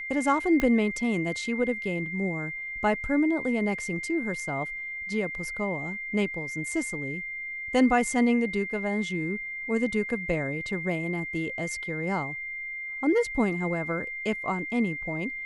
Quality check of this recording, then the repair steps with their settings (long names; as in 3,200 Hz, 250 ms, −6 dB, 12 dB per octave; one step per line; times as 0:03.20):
whistle 2,100 Hz −33 dBFS
0:00.60: click −14 dBFS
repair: click removal
notch filter 2,100 Hz, Q 30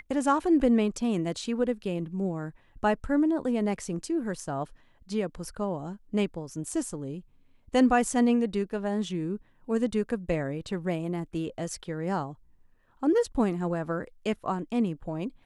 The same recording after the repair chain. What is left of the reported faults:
0:00.60: click